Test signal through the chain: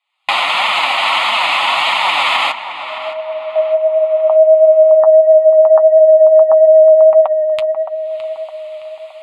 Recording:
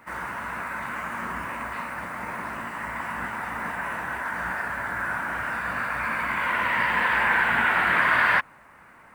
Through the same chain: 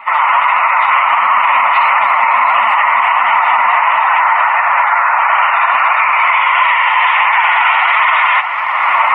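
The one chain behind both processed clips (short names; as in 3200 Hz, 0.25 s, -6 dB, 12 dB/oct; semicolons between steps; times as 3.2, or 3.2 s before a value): recorder AGC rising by 42 dB/s; HPF 900 Hz 12 dB/oct; spectral gate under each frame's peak -30 dB strong; tilt +3.5 dB/oct; in parallel at 0 dB: compressor, threshold -30 dBFS; on the sum: flange 1.5 Hz, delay 4.3 ms, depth 4.7 ms, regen +40%; tape spacing loss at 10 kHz 42 dB; fixed phaser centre 1600 Hz, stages 6; on a send: tape echo 0.615 s, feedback 50%, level -10 dB, low-pass 2700 Hz; on the sum: maximiser +28 dB; gain -1 dB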